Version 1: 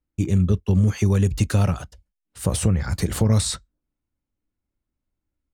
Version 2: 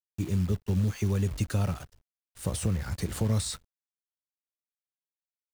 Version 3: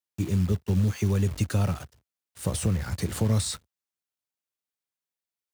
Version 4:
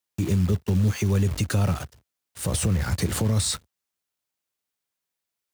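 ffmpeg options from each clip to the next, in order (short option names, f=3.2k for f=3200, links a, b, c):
-af "acrusher=bits=7:dc=4:mix=0:aa=0.000001,volume=-8.5dB"
-af "highpass=f=65:w=0.5412,highpass=f=65:w=1.3066,volume=3dB"
-af "alimiter=limit=-20.5dB:level=0:latency=1:release=72,volume=6.5dB"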